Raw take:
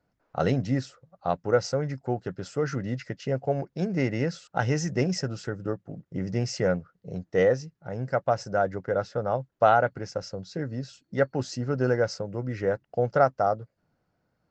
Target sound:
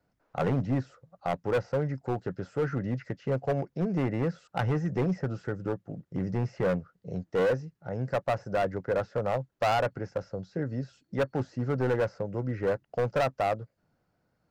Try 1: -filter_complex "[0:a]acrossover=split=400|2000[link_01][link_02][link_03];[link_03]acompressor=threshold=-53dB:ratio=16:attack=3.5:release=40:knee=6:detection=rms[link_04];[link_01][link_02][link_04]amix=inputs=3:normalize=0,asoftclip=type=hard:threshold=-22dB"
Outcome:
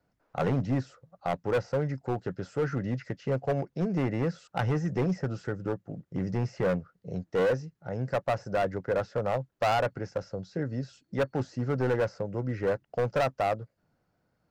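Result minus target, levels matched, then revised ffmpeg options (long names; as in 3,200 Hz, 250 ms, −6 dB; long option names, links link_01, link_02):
downward compressor: peak gain reduction −6.5 dB
-filter_complex "[0:a]acrossover=split=400|2000[link_01][link_02][link_03];[link_03]acompressor=threshold=-60dB:ratio=16:attack=3.5:release=40:knee=6:detection=rms[link_04];[link_01][link_02][link_04]amix=inputs=3:normalize=0,asoftclip=type=hard:threshold=-22dB"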